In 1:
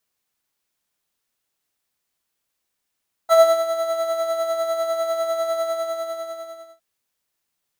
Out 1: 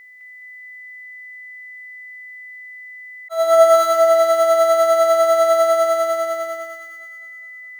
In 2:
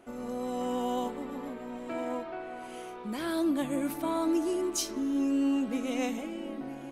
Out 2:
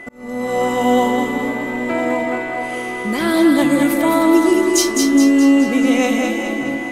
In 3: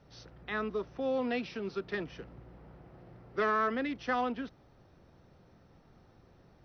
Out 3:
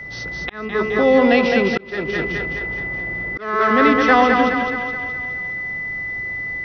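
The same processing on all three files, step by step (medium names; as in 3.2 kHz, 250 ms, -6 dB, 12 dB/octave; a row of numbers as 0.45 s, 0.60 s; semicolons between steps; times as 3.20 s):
whistle 2 kHz -48 dBFS; two-band feedback delay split 410 Hz, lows 154 ms, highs 210 ms, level -4 dB; slow attack 481 ms; peak normalisation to -2 dBFS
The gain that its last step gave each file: +6.5 dB, +14.0 dB, +17.0 dB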